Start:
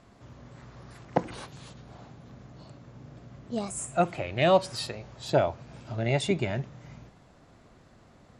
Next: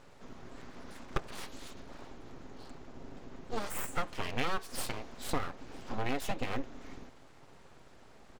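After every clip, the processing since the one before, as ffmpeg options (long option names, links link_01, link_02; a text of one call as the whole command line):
ffmpeg -i in.wav -af "aecho=1:1:7.5:0.38,acompressor=threshold=-28dB:ratio=8,aeval=exprs='abs(val(0))':channel_layout=same,volume=1dB" out.wav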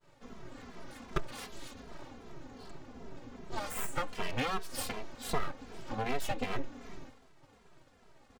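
ffmpeg -i in.wav -filter_complex "[0:a]agate=range=-33dB:threshold=-49dB:ratio=3:detection=peak,asplit=2[link_01][link_02];[link_02]adelay=2.6,afreqshift=-2.6[link_03];[link_01][link_03]amix=inputs=2:normalize=1,volume=3.5dB" out.wav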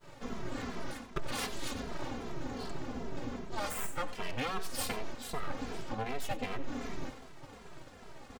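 ffmpeg -i in.wav -af "areverse,acompressor=threshold=-42dB:ratio=8,areverse,aecho=1:1:92:0.168,volume=10.5dB" out.wav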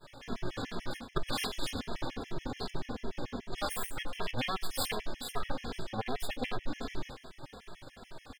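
ffmpeg -i in.wav -filter_complex "[0:a]acrossover=split=7700[link_01][link_02];[link_01]aexciter=amount=1.3:drive=7.1:freq=3300[link_03];[link_03][link_02]amix=inputs=2:normalize=0,afftfilt=real='re*gt(sin(2*PI*6.9*pts/sr)*(1-2*mod(floor(b*sr/1024/1700),2)),0)':imag='im*gt(sin(2*PI*6.9*pts/sr)*(1-2*mod(floor(b*sr/1024/1700),2)),0)':win_size=1024:overlap=0.75,volume=4dB" out.wav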